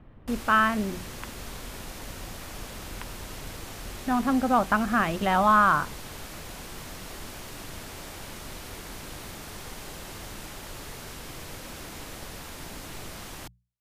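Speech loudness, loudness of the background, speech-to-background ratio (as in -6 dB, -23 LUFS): -23.5 LUFS, -40.0 LUFS, 16.5 dB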